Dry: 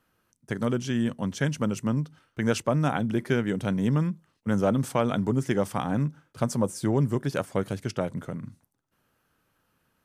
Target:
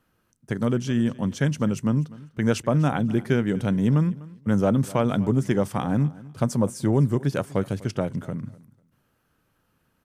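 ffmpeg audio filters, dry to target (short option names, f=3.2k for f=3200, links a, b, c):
-filter_complex "[0:a]lowshelf=f=370:g=5,asplit=2[a][b];[b]aecho=0:1:248|496:0.0944|0.0198[c];[a][c]amix=inputs=2:normalize=0"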